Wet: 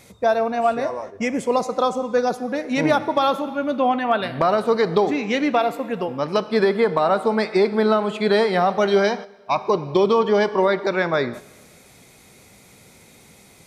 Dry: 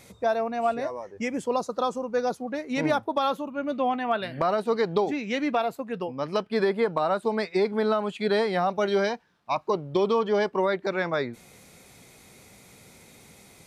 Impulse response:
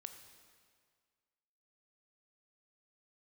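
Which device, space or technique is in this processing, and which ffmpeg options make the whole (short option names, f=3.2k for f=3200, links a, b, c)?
keyed gated reverb: -filter_complex "[0:a]asplit=3[a][b][c];[1:a]atrim=start_sample=2205[d];[b][d]afir=irnorm=-1:irlink=0[e];[c]apad=whole_len=602529[f];[e][f]sidechaingate=range=-10dB:threshold=-41dB:ratio=16:detection=peak,volume=6dB[g];[a][g]amix=inputs=2:normalize=0"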